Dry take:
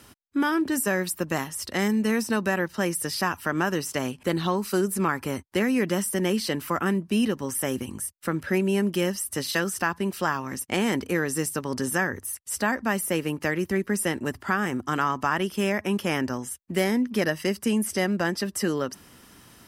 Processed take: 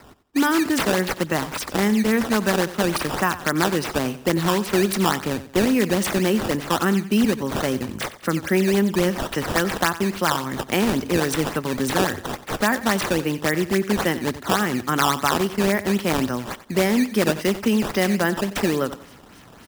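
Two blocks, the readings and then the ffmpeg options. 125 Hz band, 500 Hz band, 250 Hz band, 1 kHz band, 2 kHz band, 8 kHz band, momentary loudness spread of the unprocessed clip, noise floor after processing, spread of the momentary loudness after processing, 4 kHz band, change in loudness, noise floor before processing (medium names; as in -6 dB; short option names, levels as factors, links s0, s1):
+5.0 dB, +5.0 dB, +4.5 dB, +5.0 dB, +3.5 dB, +1.5 dB, 5 LU, -46 dBFS, 6 LU, +6.5 dB, +4.5 dB, -54 dBFS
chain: -filter_complex "[0:a]acrossover=split=110[s0][s1];[s1]acrusher=samples=12:mix=1:aa=0.000001:lfo=1:lforange=19.2:lforate=3.6[s2];[s0][s2]amix=inputs=2:normalize=0,aecho=1:1:91|182|273:0.178|0.0622|0.0218,volume=1.68"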